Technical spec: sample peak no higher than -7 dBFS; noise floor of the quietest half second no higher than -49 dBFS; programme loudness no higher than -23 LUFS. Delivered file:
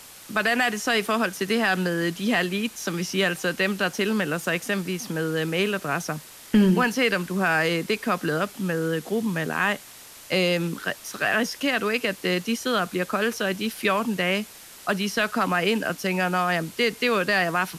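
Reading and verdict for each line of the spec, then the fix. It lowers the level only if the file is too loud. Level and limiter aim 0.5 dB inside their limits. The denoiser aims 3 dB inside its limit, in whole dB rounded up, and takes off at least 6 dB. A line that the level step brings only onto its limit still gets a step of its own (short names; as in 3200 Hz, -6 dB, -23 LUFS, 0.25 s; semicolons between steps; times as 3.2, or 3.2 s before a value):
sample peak -9.5 dBFS: OK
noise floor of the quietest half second -45 dBFS: fail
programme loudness -24.5 LUFS: OK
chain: denoiser 7 dB, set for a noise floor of -45 dBFS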